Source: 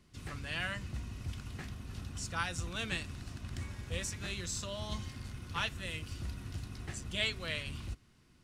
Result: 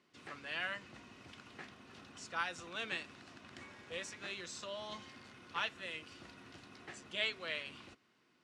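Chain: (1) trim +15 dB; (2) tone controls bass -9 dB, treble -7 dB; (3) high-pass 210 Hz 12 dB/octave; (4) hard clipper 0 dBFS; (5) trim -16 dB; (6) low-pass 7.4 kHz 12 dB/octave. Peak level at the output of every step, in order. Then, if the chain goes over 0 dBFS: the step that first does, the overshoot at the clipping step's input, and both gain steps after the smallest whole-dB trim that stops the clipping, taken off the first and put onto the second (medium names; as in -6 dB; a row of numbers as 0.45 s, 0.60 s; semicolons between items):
-3.0 dBFS, -4.5 dBFS, -5.0 dBFS, -5.0 dBFS, -21.0 dBFS, -21.0 dBFS; nothing clips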